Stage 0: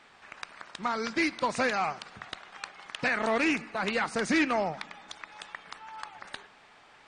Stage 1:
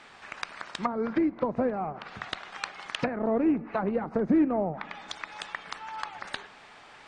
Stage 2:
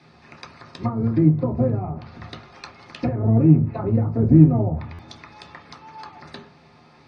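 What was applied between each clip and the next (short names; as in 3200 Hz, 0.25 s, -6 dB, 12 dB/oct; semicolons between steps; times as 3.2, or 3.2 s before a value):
treble ducked by the level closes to 520 Hz, closed at -26.5 dBFS; gain +5.5 dB
octaver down 1 oct, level +1 dB; reverb RT60 0.30 s, pre-delay 3 ms, DRR -1.5 dB; stuck buffer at 4.93, samples 512, times 4; gain -10 dB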